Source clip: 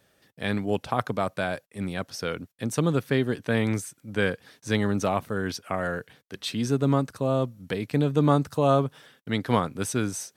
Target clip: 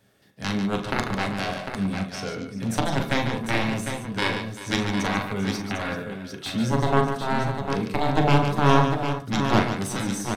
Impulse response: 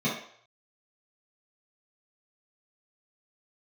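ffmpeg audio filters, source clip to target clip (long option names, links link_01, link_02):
-filter_complex "[0:a]asettb=1/sr,asplit=3[link_01][link_02][link_03];[link_01]atrim=end=1.924[link_04];[link_02]atrim=start=1.92:end=2.53,asetpts=PTS-STARTPTS,afade=type=in:duration=0.004:curve=qsin,afade=type=out:start_time=0.606:duration=0.004:curve=qsin,lowpass=10000[link_05];[link_03]atrim=start=2.526[link_06];[link_04][link_05]acrossfade=duration=0.004:curve1=hsin:curve2=qsin[link_07];[link_07][link_06]acrossfade=duration=0.004:curve1=qsin:curve2=hsin,aeval=exprs='0.501*(cos(1*acos(clip(val(0)/0.501,-1,1)))-cos(1*PI/2))+0.141*(cos(7*acos(clip(val(0)/0.501,-1,1)))-cos(7*PI/2))':channel_layout=same,aecho=1:1:41|144|388|751:0.398|0.398|0.188|0.422,asplit=2[link_08][link_09];[1:a]atrim=start_sample=2205,atrim=end_sample=3528[link_10];[link_09][link_10]afir=irnorm=-1:irlink=0,volume=-15dB[link_11];[link_08][link_11]amix=inputs=2:normalize=0"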